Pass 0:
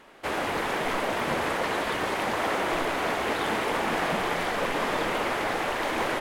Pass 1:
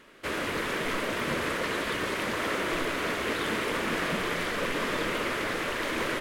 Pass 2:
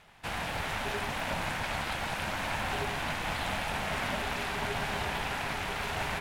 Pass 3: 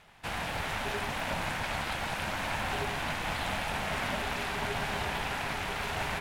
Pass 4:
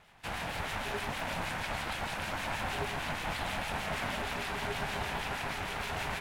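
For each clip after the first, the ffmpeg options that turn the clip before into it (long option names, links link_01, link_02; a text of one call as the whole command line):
ffmpeg -i in.wav -af "equalizer=frequency=790:width=2.6:gain=-13" out.wav
ffmpeg -i in.wav -af "aeval=exprs='val(0)*sin(2*PI*410*n/s)':channel_layout=same,bandreject=frequency=61.81:width_type=h:width=4,bandreject=frequency=123.62:width_type=h:width=4,bandreject=frequency=185.43:width_type=h:width=4,bandreject=frequency=247.24:width_type=h:width=4,bandreject=frequency=309.05:width_type=h:width=4,bandreject=frequency=370.86:width_type=h:width=4,bandreject=frequency=432.67:width_type=h:width=4,bandreject=frequency=494.48:width_type=h:width=4,bandreject=frequency=556.29:width_type=h:width=4,bandreject=frequency=618.1:width_type=h:width=4,bandreject=frequency=679.91:width_type=h:width=4,bandreject=frequency=741.72:width_type=h:width=4,bandreject=frequency=803.53:width_type=h:width=4,bandreject=frequency=865.34:width_type=h:width=4,bandreject=frequency=927.15:width_type=h:width=4,bandreject=frequency=988.96:width_type=h:width=4,bandreject=frequency=1050.77:width_type=h:width=4,bandreject=frequency=1112.58:width_type=h:width=4,bandreject=frequency=1174.39:width_type=h:width=4,bandreject=frequency=1236.2:width_type=h:width=4,bandreject=frequency=1298.01:width_type=h:width=4,bandreject=frequency=1359.82:width_type=h:width=4,bandreject=frequency=1421.63:width_type=h:width=4,bandreject=frequency=1483.44:width_type=h:width=4,bandreject=frequency=1545.25:width_type=h:width=4,bandreject=frequency=1607.06:width_type=h:width=4,bandreject=frequency=1668.87:width_type=h:width=4,bandreject=frequency=1730.68:width_type=h:width=4,bandreject=frequency=1792.49:width_type=h:width=4,bandreject=frequency=1854.3:width_type=h:width=4,bandreject=frequency=1916.11:width_type=h:width=4,bandreject=frequency=1977.92:width_type=h:width=4,bandreject=frequency=2039.73:width_type=h:width=4,bandreject=frequency=2101.54:width_type=h:width=4,bandreject=frequency=2163.35:width_type=h:width=4,bandreject=frequency=2225.16:width_type=h:width=4,bandreject=frequency=2286.97:width_type=h:width=4,bandreject=frequency=2348.78:width_type=h:width=4,bandreject=frequency=2410.59:width_type=h:width=4" out.wav
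ffmpeg -i in.wav -af anull out.wav
ffmpeg -i in.wav -filter_complex "[0:a]acrossover=split=1700[link_01][link_02];[link_01]aeval=exprs='val(0)*(1-0.5/2+0.5/2*cos(2*PI*6.4*n/s))':channel_layout=same[link_03];[link_02]aeval=exprs='val(0)*(1-0.5/2-0.5/2*cos(2*PI*6.4*n/s))':channel_layout=same[link_04];[link_03][link_04]amix=inputs=2:normalize=0" out.wav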